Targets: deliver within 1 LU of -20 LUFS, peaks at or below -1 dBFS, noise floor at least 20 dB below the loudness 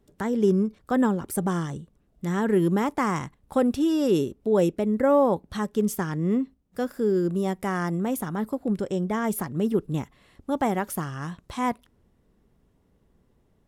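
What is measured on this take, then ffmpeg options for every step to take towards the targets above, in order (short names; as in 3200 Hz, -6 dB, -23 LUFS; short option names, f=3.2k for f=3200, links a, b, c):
loudness -25.5 LUFS; peak -10.0 dBFS; loudness target -20.0 LUFS
-> -af "volume=5.5dB"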